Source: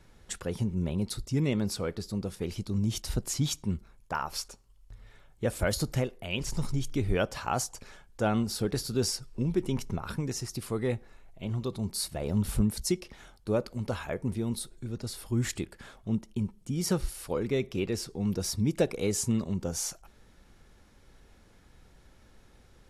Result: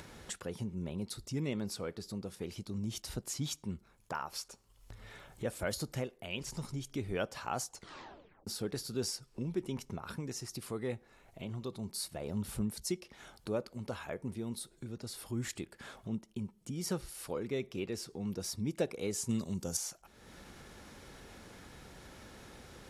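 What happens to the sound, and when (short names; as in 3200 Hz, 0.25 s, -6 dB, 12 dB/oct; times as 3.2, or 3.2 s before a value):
7.71 tape stop 0.76 s
19.29–19.77 tone controls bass +4 dB, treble +14 dB
whole clip: HPF 140 Hz 6 dB/oct; upward compressor, threshold -31 dBFS; gain -6.5 dB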